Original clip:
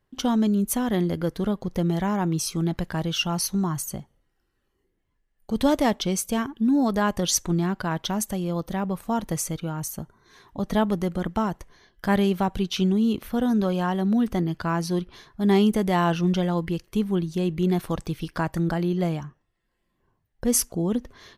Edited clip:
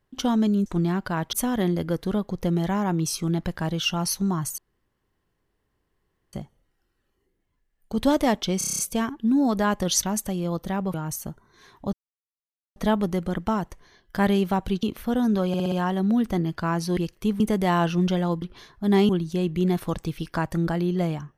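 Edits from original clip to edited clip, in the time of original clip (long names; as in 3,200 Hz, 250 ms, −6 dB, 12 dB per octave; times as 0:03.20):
0:03.91: splice in room tone 1.75 s
0:06.16: stutter 0.03 s, 8 plays
0:07.40–0:08.07: move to 0:00.66
0:08.98–0:09.66: remove
0:10.65: splice in silence 0.83 s
0:12.72–0:13.09: remove
0:13.74: stutter 0.06 s, 5 plays
0:14.99–0:15.66: swap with 0:16.68–0:17.11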